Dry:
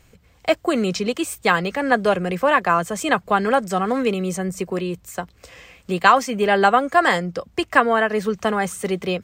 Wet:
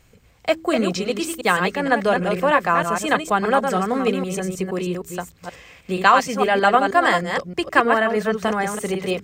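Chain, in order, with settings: reverse delay 0.157 s, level -5 dB; de-hum 80.87 Hz, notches 5; gain -1 dB

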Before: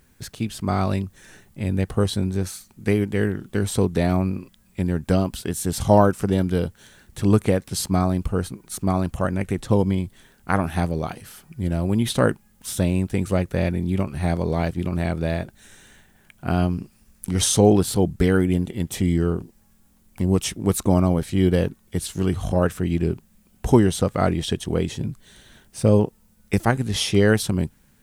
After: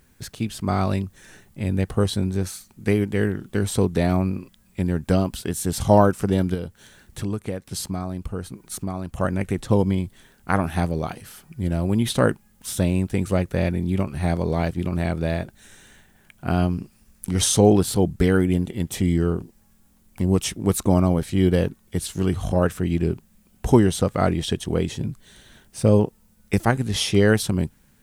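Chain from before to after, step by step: 6.54–9.17 compressor 3:1, threshold -27 dBFS, peak gain reduction 12 dB

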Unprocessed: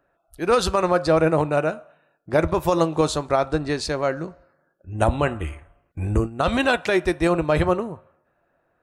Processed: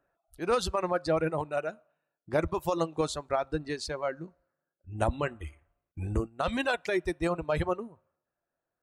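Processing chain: reverb removal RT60 1.9 s; gain -8 dB

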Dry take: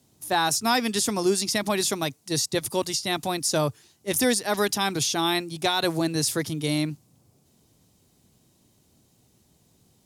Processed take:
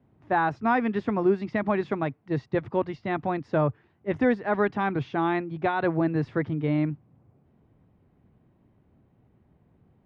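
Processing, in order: LPF 2000 Hz 24 dB/oct; low shelf 160 Hz +4 dB

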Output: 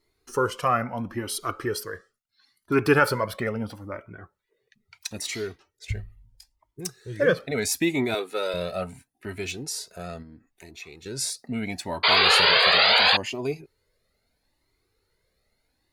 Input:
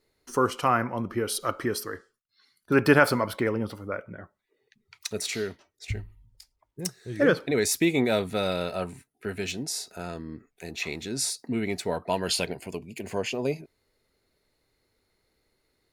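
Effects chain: 8.14–8.54 HPF 300 Hz 24 dB/oct; 10.22–11.06 compressor 3:1, threshold -43 dBFS, peak gain reduction 12.5 dB; 12.03–13.17 painted sound noise 390–4900 Hz -18 dBFS; cascading flanger rising 0.75 Hz; gain +4 dB

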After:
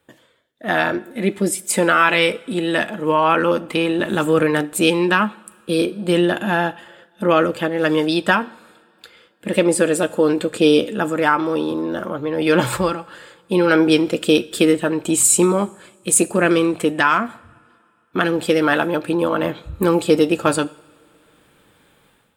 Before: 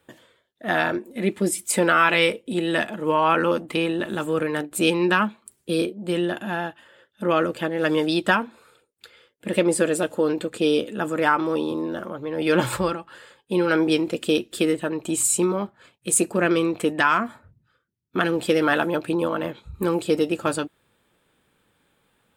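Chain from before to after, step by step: two-slope reverb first 0.64 s, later 2.7 s, from -16 dB, DRR 17 dB; AGC gain up to 11.5 dB; gain -1 dB

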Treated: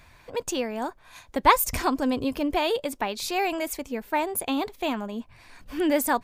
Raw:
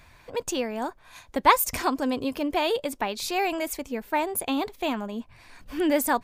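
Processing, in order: 1.43–2.58 low shelf 130 Hz +9.5 dB

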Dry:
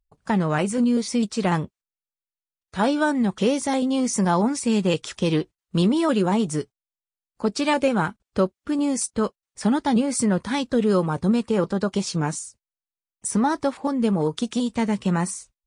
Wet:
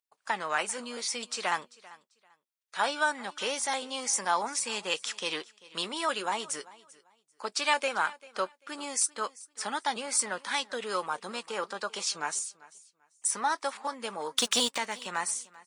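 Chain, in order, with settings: HPF 1000 Hz 12 dB/oct; 14.38–14.78 sample leveller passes 3; feedback echo 0.392 s, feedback 22%, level -21 dB

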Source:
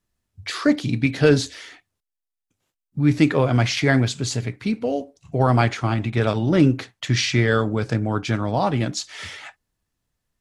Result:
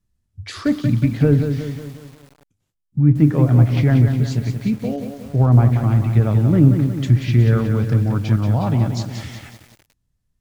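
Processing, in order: tone controls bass +14 dB, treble +3 dB; treble ducked by the level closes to 1200 Hz, closed at -5 dBFS; on a send: analogue delay 97 ms, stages 1024, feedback 31%, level -21 dB; on the sum: lo-fi delay 0.182 s, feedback 55%, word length 6-bit, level -7 dB; gain -5.5 dB

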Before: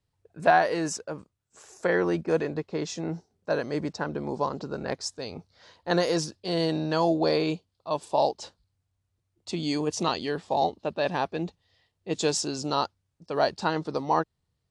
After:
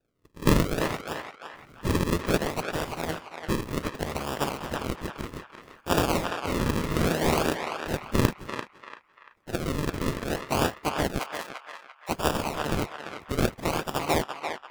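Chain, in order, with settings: spectral limiter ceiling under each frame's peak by 25 dB; decimation with a swept rate 41×, swing 100% 0.63 Hz; 11.19–12.09 steep high-pass 600 Hz; narrowing echo 0.342 s, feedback 43%, band-pass 1600 Hz, level -3 dB

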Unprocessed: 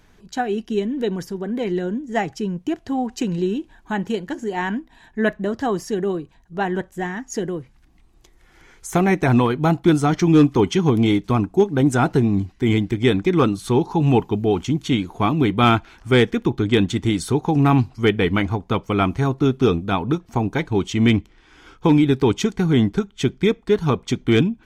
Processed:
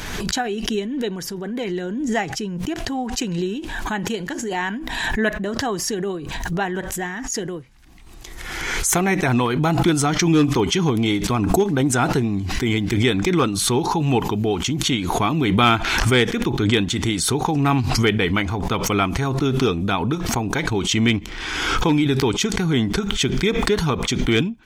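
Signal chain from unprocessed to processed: tilt shelf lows -4 dB, about 1200 Hz; backwards sustainer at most 29 dB/s

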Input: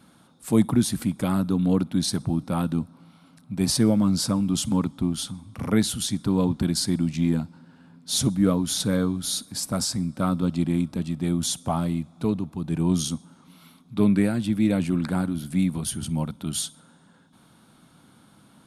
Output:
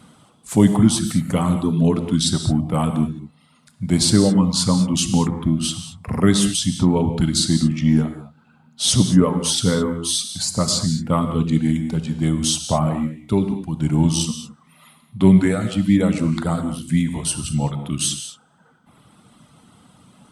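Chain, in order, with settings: reverb removal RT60 1.3 s; speed mistake 48 kHz file played as 44.1 kHz; non-linear reverb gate 0.24 s flat, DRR 7 dB; gain +6.5 dB

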